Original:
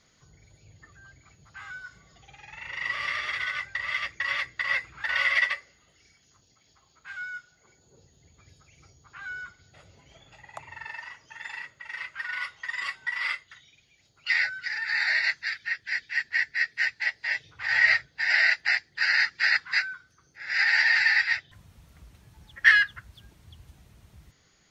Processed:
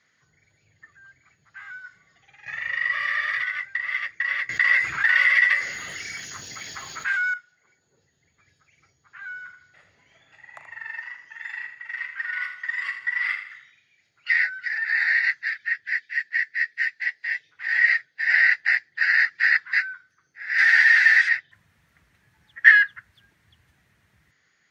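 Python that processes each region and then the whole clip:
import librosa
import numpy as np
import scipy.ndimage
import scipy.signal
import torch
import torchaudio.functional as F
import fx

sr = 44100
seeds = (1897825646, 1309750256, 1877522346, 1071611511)

y = fx.chain(x, sr, fx.comb(ms=1.7, depth=0.68),
    fx.env_flatten(amount_pct=50), at=(2.46, 3.43))
y = fx.chain(y, sr, fx.high_shelf(hz=6200.0, db=9.5),
    fx.env_flatten(amount_pct=70), at=(4.49, 7.34))
y = fx.chain(y, sr, fx.doubler(ms=38.0, db=-12.0),
    fx.echo_feedback(ms=80, feedback_pct=43, wet_db=-9), at=(9.34, 14.28))
y = fx.chain(y, sr, fx.highpass(hz=370.0, slope=6),
    fx.peak_eq(hz=1100.0, db=-5.0, octaves=1.6), at=(15.97, 18.27))
y = fx.chain(y, sr, fx.crossing_spikes(level_db=-18.5),
    fx.cabinet(low_hz=130.0, low_slope=12, high_hz=6000.0, hz=(250.0, 440.0, 1400.0, 3400.0), db=(-6, 7, 5, 9)), at=(20.58, 21.29))
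y = scipy.signal.sosfilt(scipy.signal.butter(2, 100.0, 'highpass', fs=sr, output='sos'), y)
y = fx.peak_eq(y, sr, hz=1800.0, db=14.0, octaves=0.87)
y = y * 10.0 ** (-8.5 / 20.0)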